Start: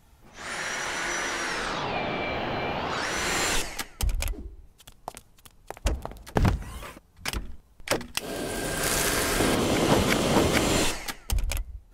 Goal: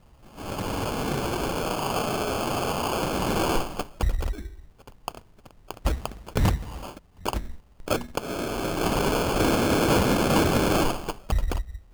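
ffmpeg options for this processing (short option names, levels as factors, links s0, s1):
-af "acrusher=samples=23:mix=1:aa=0.000001,volume=7.94,asoftclip=hard,volume=0.126,volume=1.33"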